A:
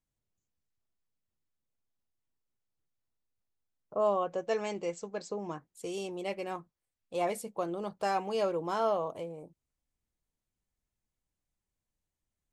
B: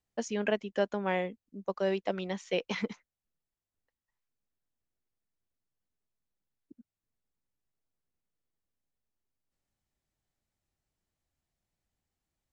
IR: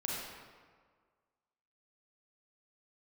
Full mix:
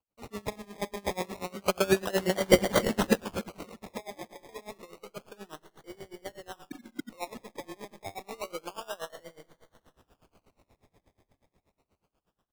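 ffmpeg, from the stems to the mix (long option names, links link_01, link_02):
-filter_complex "[0:a]alimiter=level_in=0.5dB:limit=-24dB:level=0:latency=1:release=60,volume=-0.5dB,lowshelf=frequency=240:gain=-9,volume=-13dB,asplit=2[link_01][link_02];[link_02]volume=-10.5dB[link_03];[1:a]highshelf=frequency=5100:gain=9.5,dynaudnorm=framelen=310:gausssize=13:maxgain=16.5dB,volume=-4.5dB,asplit=3[link_04][link_05][link_06];[link_05]volume=-14.5dB[link_07];[link_06]volume=-4dB[link_08];[2:a]atrim=start_sample=2205[link_09];[link_03][link_07]amix=inputs=2:normalize=0[link_10];[link_10][link_09]afir=irnorm=-1:irlink=0[link_11];[link_08]aecho=0:1:281|562|843|1124|1405|1686|1967:1|0.49|0.24|0.118|0.0576|0.0282|0.0138[link_12];[link_01][link_04][link_11][link_12]amix=inputs=4:normalize=0,dynaudnorm=framelen=140:gausssize=21:maxgain=11dB,acrusher=samples=24:mix=1:aa=0.000001:lfo=1:lforange=14.4:lforate=0.29,aeval=exprs='val(0)*pow(10,-23*(0.5-0.5*cos(2*PI*8.3*n/s))/20)':channel_layout=same"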